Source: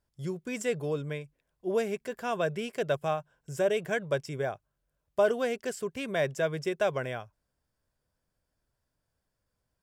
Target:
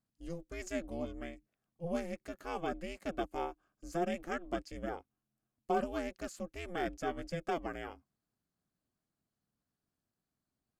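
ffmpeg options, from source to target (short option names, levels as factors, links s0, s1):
-af "aeval=exprs='val(0)*sin(2*PI*190*n/s)':c=same,asetrate=40131,aresample=44100,volume=0.562"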